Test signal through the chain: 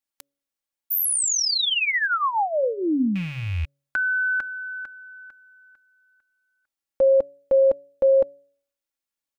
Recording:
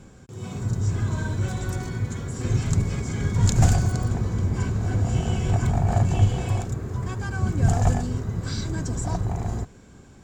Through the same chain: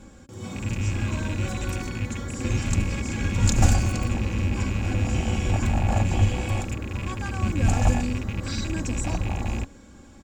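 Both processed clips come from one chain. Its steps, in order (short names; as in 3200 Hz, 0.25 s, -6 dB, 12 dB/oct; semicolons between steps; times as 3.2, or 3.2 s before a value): rattling part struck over -26 dBFS, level -27 dBFS; comb 3.6 ms, depth 61%; de-hum 140.7 Hz, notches 4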